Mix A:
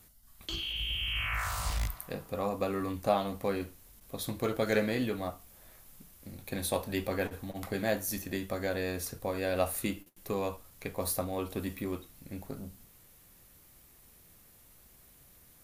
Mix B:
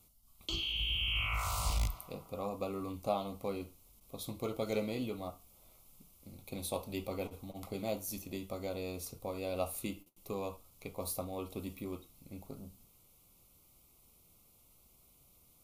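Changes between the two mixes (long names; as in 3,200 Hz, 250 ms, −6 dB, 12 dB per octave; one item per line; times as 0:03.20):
speech −6.0 dB
master: add Butterworth band-reject 1,700 Hz, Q 2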